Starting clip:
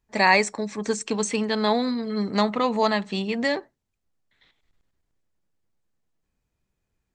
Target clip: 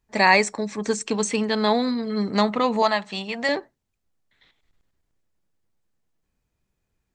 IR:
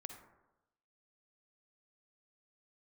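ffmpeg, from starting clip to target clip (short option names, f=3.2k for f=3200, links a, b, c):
-filter_complex "[0:a]asettb=1/sr,asplit=3[a][b][c];[a]atrim=end=2.824[d];[b]atrim=start=2.82:end=3.49,asetpts=PTS-STARTPTS,afade=t=in:d=0.004:c=qsin,afade=t=out:st=0.666:d=0.004:c=qsin,lowshelf=f=510:t=q:w=1.5:g=-7[e];[c]atrim=start=3.486[f];[d][e]acrossfade=d=0.004:c1=hsin:c2=qsin[g];[g][f]acrossfade=d=0.004:c1=qsin:c2=hsin,volume=1.5dB"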